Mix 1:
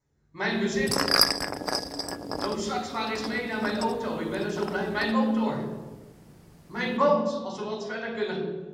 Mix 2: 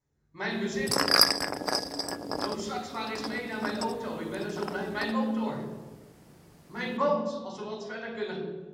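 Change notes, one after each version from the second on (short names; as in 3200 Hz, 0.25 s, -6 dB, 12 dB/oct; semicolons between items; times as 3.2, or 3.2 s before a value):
speech -4.5 dB; background: add low shelf 83 Hz -9.5 dB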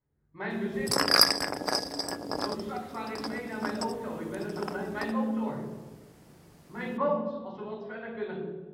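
speech: add air absorption 450 m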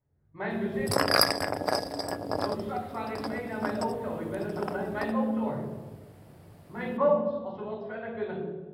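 master: add fifteen-band EQ 100 Hz +11 dB, 630 Hz +6 dB, 6300 Hz -9 dB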